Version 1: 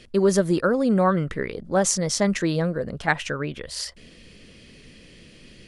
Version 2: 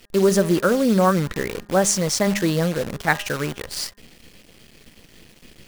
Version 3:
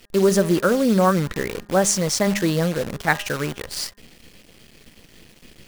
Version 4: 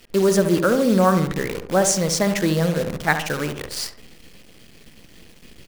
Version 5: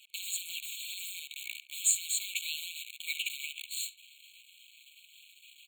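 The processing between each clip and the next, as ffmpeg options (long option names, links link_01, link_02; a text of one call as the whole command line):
ffmpeg -i in.wav -af "acrusher=bits=6:dc=4:mix=0:aa=0.000001,bandreject=frequency=203.5:width_type=h:width=4,bandreject=frequency=407:width_type=h:width=4,bandreject=frequency=610.5:width_type=h:width=4,bandreject=frequency=814:width_type=h:width=4,bandreject=frequency=1017.5:width_type=h:width=4,bandreject=frequency=1221:width_type=h:width=4,bandreject=frequency=1424.5:width_type=h:width=4,bandreject=frequency=1628:width_type=h:width=4,bandreject=frequency=1831.5:width_type=h:width=4,volume=2.5dB" out.wav
ffmpeg -i in.wav -af anull out.wav
ffmpeg -i in.wav -filter_complex "[0:a]asplit=2[link_01][link_02];[link_02]adelay=69,lowpass=frequency=1300:poles=1,volume=-7dB,asplit=2[link_03][link_04];[link_04]adelay=69,lowpass=frequency=1300:poles=1,volume=0.52,asplit=2[link_05][link_06];[link_06]adelay=69,lowpass=frequency=1300:poles=1,volume=0.52,asplit=2[link_07][link_08];[link_08]adelay=69,lowpass=frequency=1300:poles=1,volume=0.52,asplit=2[link_09][link_10];[link_10]adelay=69,lowpass=frequency=1300:poles=1,volume=0.52,asplit=2[link_11][link_12];[link_12]adelay=69,lowpass=frequency=1300:poles=1,volume=0.52[link_13];[link_01][link_03][link_05][link_07][link_09][link_11][link_13]amix=inputs=7:normalize=0" out.wav
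ffmpeg -i in.wav -af "afftfilt=real='re*eq(mod(floor(b*sr/1024/2200),2),1)':imag='im*eq(mod(floor(b*sr/1024/2200),2),1)':win_size=1024:overlap=0.75,volume=-2dB" out.wav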